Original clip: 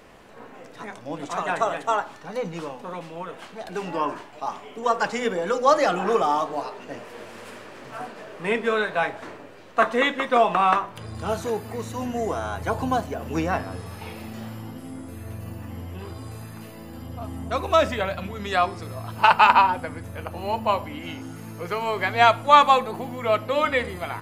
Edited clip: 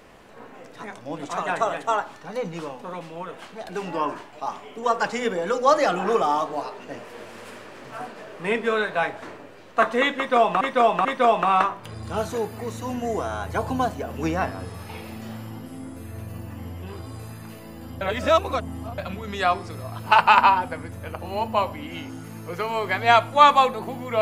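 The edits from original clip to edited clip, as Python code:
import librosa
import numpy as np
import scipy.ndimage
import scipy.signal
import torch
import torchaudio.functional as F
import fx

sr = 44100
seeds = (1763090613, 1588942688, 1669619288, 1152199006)

y = fx.edit(x, sr, fx.repeat(start_s=10.17, length_s=0.44, count=3),
    fx.reverse_span(start_s=17.13, length_s=0.97), tone=tone)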